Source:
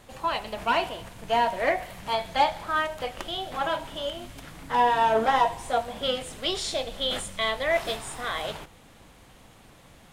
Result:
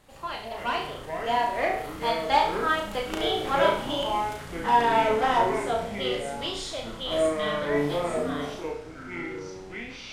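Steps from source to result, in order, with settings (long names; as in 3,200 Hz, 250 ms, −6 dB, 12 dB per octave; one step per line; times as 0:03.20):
source passing by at 0:03.51, 10 m/s, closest 14 metres
delay with pitch and tempo change per echo 105 ms, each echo −7 semitones, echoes 3, each echo −6 dB
flutter between parallel walls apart 5.9 metres, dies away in 0.48 s
level +1.5 dB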